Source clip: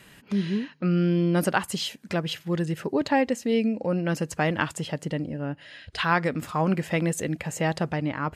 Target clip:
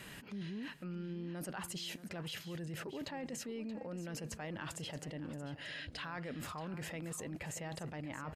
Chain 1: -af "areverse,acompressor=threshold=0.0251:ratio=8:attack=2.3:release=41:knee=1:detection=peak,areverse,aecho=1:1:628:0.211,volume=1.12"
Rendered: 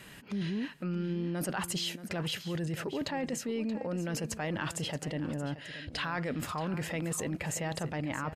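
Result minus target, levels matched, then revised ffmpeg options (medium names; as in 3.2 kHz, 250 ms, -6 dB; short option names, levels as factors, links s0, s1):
compression: peak gain reduction -9 dB
-af "areverse,acompressor=threshold=0.0075:ratio=8:attack=2.3:release=41:knee=1:detection=peak,areverse,aecho=1:1:628:0.211,volume=1.12"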